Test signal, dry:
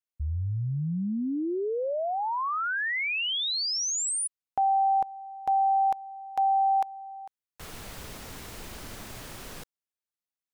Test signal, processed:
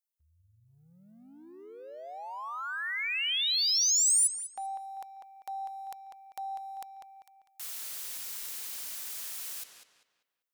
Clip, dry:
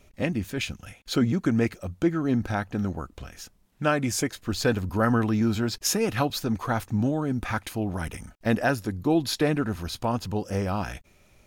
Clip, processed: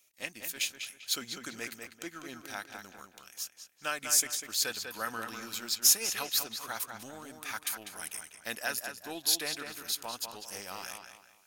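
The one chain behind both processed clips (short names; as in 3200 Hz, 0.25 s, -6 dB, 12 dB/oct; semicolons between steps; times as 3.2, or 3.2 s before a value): differentiator; sample leveller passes 1; on a send: darkening echo 0.197 s, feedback 35%, low-pass 4600 Hz, level -6 dB; on the sum: gain +2 dB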